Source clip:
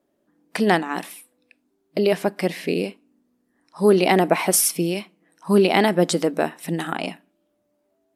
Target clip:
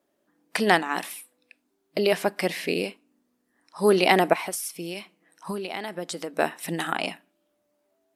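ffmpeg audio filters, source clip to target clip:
-filter_complex "[0:a]lowshelf=f=490:g=-9.5,asettb=1/sr,asplit=3[a][b][c];[a]atrim=end=4.334[d];[b]atrim=start=4.33:end=6.39,asetpts=PTS-STARTPTS,afade=t=in:d=0.004:c=qsin,afade=t=out:st=2.056:d=0.004:c=qsin,acompressor=threshold=-31dB:ratio=12[e];[c]atrim=start=6.386[f];[d][e]acrossfade=d=0.004:c1=hsin:c2=qsin[g];[g][f]acrossfade=d=0.004:c1=qsin:c2=hsin,volume=2dB"

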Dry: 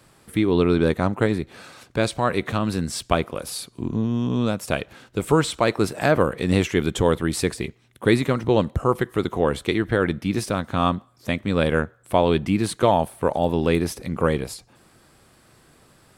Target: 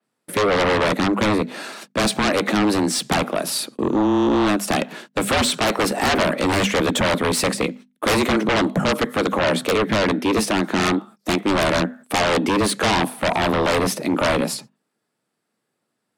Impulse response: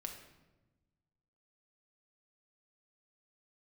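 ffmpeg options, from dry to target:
-filter_complex "[0:a]afreqshift=100,agate=range=-32dB:threshold=-45dB:ratio=16:detection=peak,bandreject=f=50:t=h:w=6,bandreject=f=100:t=h:w=6,bandreject=f=150:t=h:w=6,bandreject=f=200:t=h:w=6,bandreject=f=250:t=h:w=6,asplit=2[a][b];[b]aeval=exprs='0.708*sin(PI/2*7.94*val(0)/0.708)':c=same,volume=-3.5dB[c];[a][c]amix=inputs=2:normalize=0,adynamicequalizer=threshold=0.0562:dfrequency=4400:dqfactor=0.7:tfrequency=4400:tqfactor=0.7:attack=5:release=100:ratio=0.375:range=1.5:mode=cutabove:tftype=highshelf,volume=-9dB"

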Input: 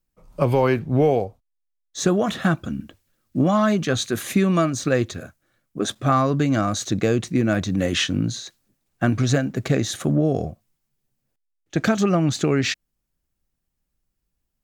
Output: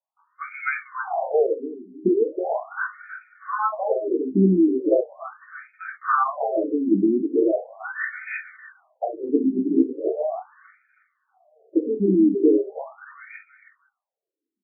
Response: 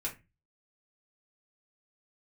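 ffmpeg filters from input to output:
-filter_complex "[0:a]aecho=1:1:319|638|957|1276:0.531|0.165|0.051|0.0158[a];[1:a]atrim=start_sample=2205,atrim=end_sample=3528[b];[a][b]afir=irnorm=-1:irlink=0,afftfilt=real='re*between(b*sr/1024,280*pow(1800/280,0.5+0.5*sin(2*PI*0.39*pts/sr))/1.41,280*pow(1800/280,0.5+0.5*sin(2*PI*0.39*pts/sr))*1.41)':imag='im*between(b*sr/1024,280*pow(1800/280,0.5+0.5*sin(2*PI*0.39*pts/sr))/1.41,280*pow(1800/280,0.5+0.5*sin(2*PI*0.39*pts/sr))*1.41)':win_size=1024:overlap=0.75,volume=3dB"

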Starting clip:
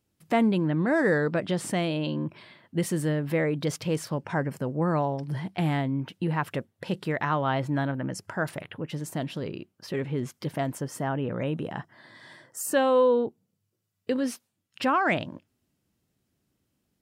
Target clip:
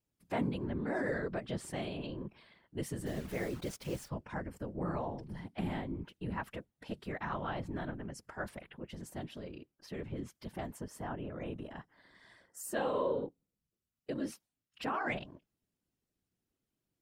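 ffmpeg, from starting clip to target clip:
-filter_complex "[0:a]asplit=3[a][b][c];[a]afade=t=out:st=3.05:d=0.02[d];[b]acrusher=bits=7:dc=4:mix=0:aa=0.000001,afade=t=in:st=3.05:d=0.02,afade=t=out:st=4.08:d=0.02[e];[c]afade=t=in:st=4.08:d=0.02[f];[d][e][f]amix=inputs=3:normalize=0,afftfilt=real='hypot(re,im)*cos(2*PI*random(0))':imag='hypot(re,im)*sin(2*PI*random(1))':win_size=512:overlap=0.75,volume=-5.5dB"

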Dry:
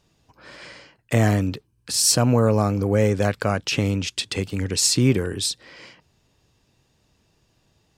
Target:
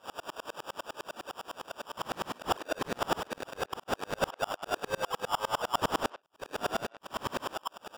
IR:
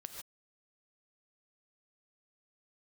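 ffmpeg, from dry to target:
-filter_complex "[0:a]areverse,highpass=f=770:w=0.5412,highpass=f=770:w=1.3066,acompressor=mode=upward:threshold=-28dB:ratio=2.5,alimiter=limit=-16dB:level=0:latency=1:release=169,acrusher=samples=21:mix=1:aa=0.000001,asplit=2[a][b];[b]adelay=120,highpass=300,lowpass=3.4k,asoftclip=type=hard:threshold=-24.5dB,volume=-22dB[c];[a][c]amix=inputs=2:normalize=0,asplit=2[d][e];[e]highpass=f=720:p=1,volume=23dB,asoftclip=type=tanh:threshold=-15dB[f];[d][f]amix=inputs=2:normalize=0,lowpass=f=6.2k:p=1,volume=-6dB,aeval=exprs='val(0)*pow(10,-35*if(lt(mod(-9.9*n/s,1),2*abs(-9.9)/1000),1-mod(-9.9*n/s,1)/(2*abs(-9.9)/1000),(mod(-9.9*n/s,1)-2*abs(-9.9)/1000)/(1-2*abs(-9.9)/1000))/20)':c=same"

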